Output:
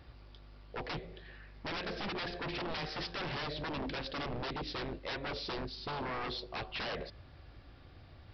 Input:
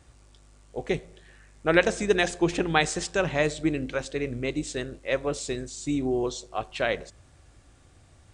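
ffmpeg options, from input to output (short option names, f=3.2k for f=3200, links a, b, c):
-af "acompressor=threshold=-26dB:ratio=6,aresample=11025,aeval=exprs='0.02*(abs(mod(val(0)/0.02+3,4)-2)-1)':c=same,aresample=44100,volume=1dB"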